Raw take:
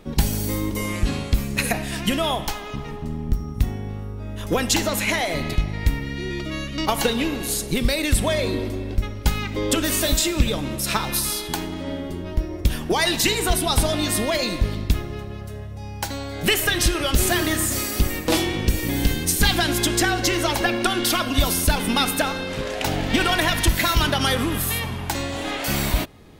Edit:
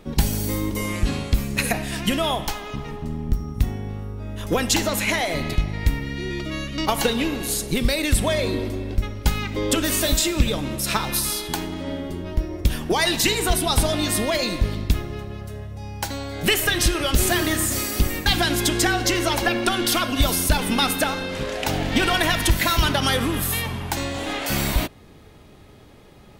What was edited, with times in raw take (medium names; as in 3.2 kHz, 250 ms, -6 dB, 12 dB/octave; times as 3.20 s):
18.26–19.44 s: delete